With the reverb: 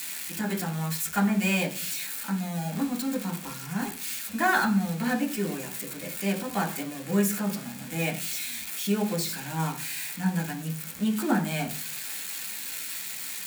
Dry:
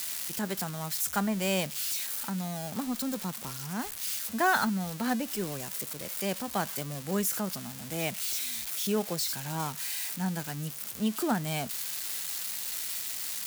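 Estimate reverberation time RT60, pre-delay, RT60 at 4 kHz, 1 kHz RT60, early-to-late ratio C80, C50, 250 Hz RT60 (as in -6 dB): 0.45 s, 3 ms, 0.55 s, 0.40 s, 16.5 dB, 12.0 dB, 0.70 s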